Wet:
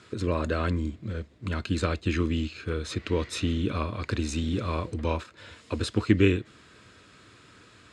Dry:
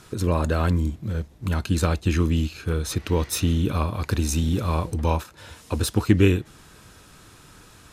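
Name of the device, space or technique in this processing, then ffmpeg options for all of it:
car door speaker: -af "highpass=100,equalizer=f=160:t=q:w=4:g=-8,equalizer=f=830:t=q:w=4:g=-10,equalizer=f=2.1k:t=q:w=4:g=3,equalizer=f=5.9k:t=q:w=4:g=-9,lowpass=f=7.1k:w=0.5412,lowpass=f=7.1k:w=1.3066,volume=-2dB"

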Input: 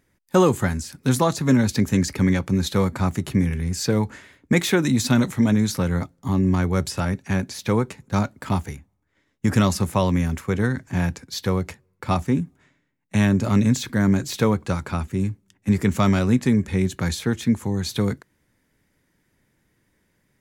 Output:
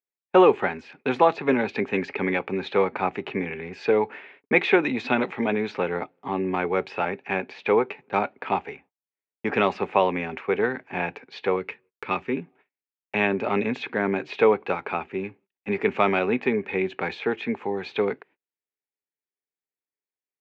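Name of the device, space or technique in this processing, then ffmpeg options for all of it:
phone earpiece: -filter_complex "[0:a]highpass=380,equalizer=f=420:t=q:w=4:g=9,equalizer=f=790:t=q:w=4:g=8,equalizer=f=2.5k:t=q:w=4:g=10,lowpass=f=3k:w=0.5412,lowpass=f=3k:w=1.3066,agate=range=-35dB:threshold=-52dB:ratio=16:detection=peak,asettb=1/sr,asplit=3[a][b][c];[a]atrim=end=11.564[d];[b]atrim=start=11.56:end=12.37,asetpts=PTS-STARTPTS,afade=t=in:d=0.004:c=qsin,afade=t=out:st=0.806:d=0.004:c=qsin,equalizer=f=720:w=2.5:g=-14[e];[c]atrim=start=12.366[f];[d][e]acrossfade=d=0.004:c1=hsin:c2=qsin[g];[g][f]acrossfade=d=0.004:c1=qsin:c2=hsin"

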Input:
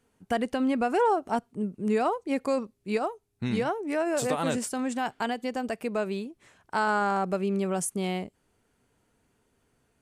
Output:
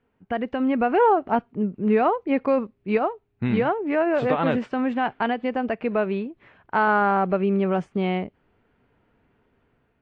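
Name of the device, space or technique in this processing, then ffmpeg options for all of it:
action camera in a waterproof case: -af "lowpass=f=2.8k:w=0.5412,lowpass=f=2.8k:w=1.3066,dynaudnorm=f=270:g=5:m=6dB" -ar 22050 -c:a aac -b:a 48k

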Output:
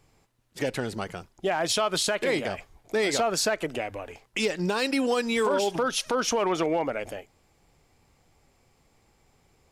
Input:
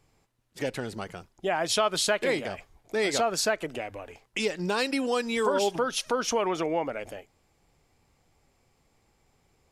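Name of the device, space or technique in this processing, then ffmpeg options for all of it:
limiter into clipper: -af "alimiter=limit=-19.5dB:level=0:latency=1:release=32,asoftclip=type=hard:threshold=-21dB,volume=3.5dB"

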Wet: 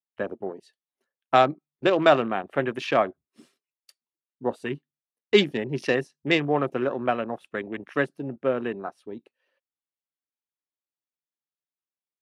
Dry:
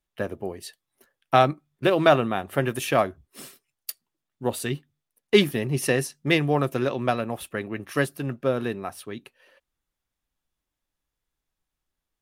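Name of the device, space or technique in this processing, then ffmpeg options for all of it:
over-cleaned archive recording: -af "highpass=200,lowpass=6.7k,afwtdn=0.0141"

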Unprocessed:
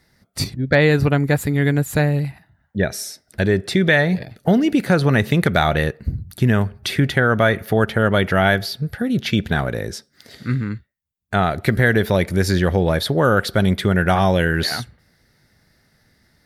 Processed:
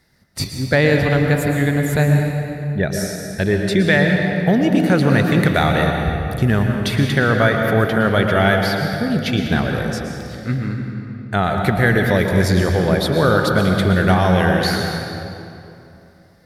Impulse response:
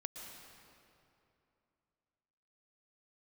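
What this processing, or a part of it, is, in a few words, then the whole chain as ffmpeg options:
stairwell: -filter_complex "[1:a]atrim=start_sample=2205[a];[0:a][a]afir=irnorm=-1:irlink=0,volume=3.5dB"

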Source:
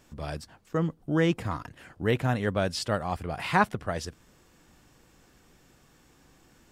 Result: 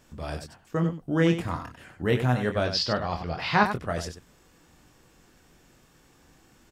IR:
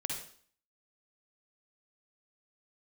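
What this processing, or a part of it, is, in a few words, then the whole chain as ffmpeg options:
slapback doubling: -filter_complex "[0:a]asettb=1/sr,asplit=3[a][b][c];[a]atrim=end=2.644[d];[b]atrim=start=2.64:end=3.66,asetpts=PTS-STARTPTS,afade=t=in:d=0.004:c=qsin,afade=t=out:st=1.016:d=0.004:c=qsin,highshelf=f=6.7k:t=q:w=3:g=-11.5[e];[c]atrim=start=3.656[f];[d][e]acrossfade=d=0.004:c1=hsin:c2=qsin[g];[g][f]acrossfade=d=0.004:c1=qsin:c2=hsin,asplit=3[h][i][j];[i]adelay=24,volume=-6.5dB[k];[j]adelay=95,volume=-9dB[l];[h][k][l]amix=inputs=3:normalize=0"

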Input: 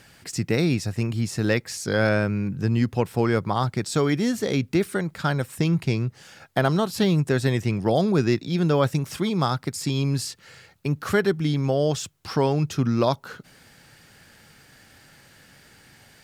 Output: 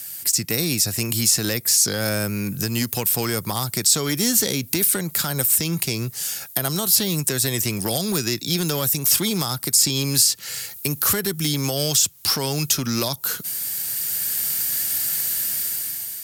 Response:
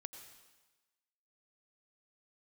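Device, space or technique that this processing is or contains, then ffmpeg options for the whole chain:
FM broadcast chain: -filter_complex "[0:a]highpass=63,dynaudnorm=f=340:g=5:m=11.5dB,acrossover=split=250|1200|6300[a][b][c][d];[a]acompressor=threshold=-23dB:ratio=4[e];[b]acompressor=threshold=-23dB:ratio=4[f];[c]acompressor=threshold=-32dB:ratio=4[g];[d]acompressor=threshold=-48dB:ratio=4[h];[e][f][g][h]amix=inputs=4:normalize=0,aemphasis=mode=production:type=75fm,alimiter=limit=-12.5dB:level=0:latency=1:release=127,asoftclip=type=hard:threshold=-15.5dB,lowpass=f=15k:w=0.5412,lowpass=f=15k:w=1.3066,aemphasis=mode=production:type=75fm,volume=-1.5dB"

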